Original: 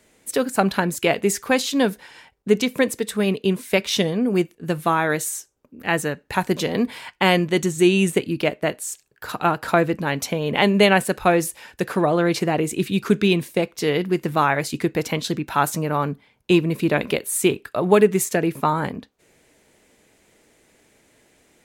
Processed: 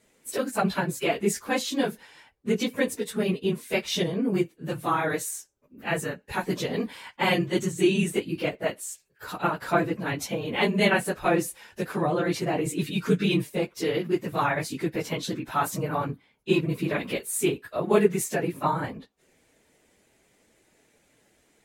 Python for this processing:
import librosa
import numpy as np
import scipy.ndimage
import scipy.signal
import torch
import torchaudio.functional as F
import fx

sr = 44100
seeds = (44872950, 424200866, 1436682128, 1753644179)

y = fx.phase_scramble(x, sr, seeds[0], window_ms=50)
y = fx.comb(y, sr, ms=6.5, depth=0.65, at=(12.65, 13.5))
y = F.gain(torch.from_numpy(y), -6.0).numpy()